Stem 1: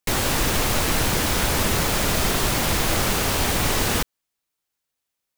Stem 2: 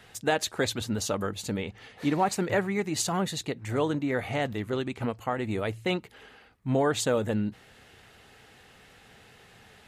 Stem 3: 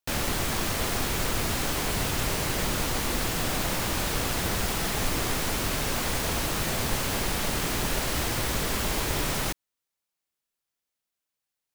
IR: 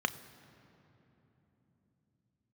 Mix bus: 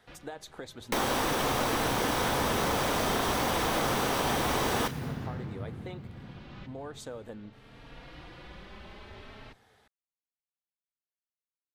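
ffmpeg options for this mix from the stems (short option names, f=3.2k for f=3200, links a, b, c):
-filter_complex "[0:a]adelay=850,volume=-2dB,asplit=2[a][b];[b]volume=-3.5dB[c];[1:a]acompressor=threshold=-30dB:ratio=6,volume=-10dB,asplit=3[d][e][f];[e]volume=-13dB[g];[2:a]lowpass=f=3.8k:w=0.5412,lowpass=f=3.8k:w=1.3066,asplit=2[h][i];[i]adelay=3.7,afreqshift=0.49[j];[h][j]amix=inputs=2:normalize=1,volume=-15.5dB[k];[f]apad=whole_len=518139[l];[k][l]sidechaincompress=threshold=-53dB:ratio=5:attack=11:release=608[m];[3:a]atrim=start_sample=2205[n];[c][g]amix=inputs=2:normalize=0[o];[o][n]afir=irnorm=-1:irlink=0[p];[a][d][m][p]amix=inputs=4:normalize=0,acompressor=threshold=-31dB:ratio=2"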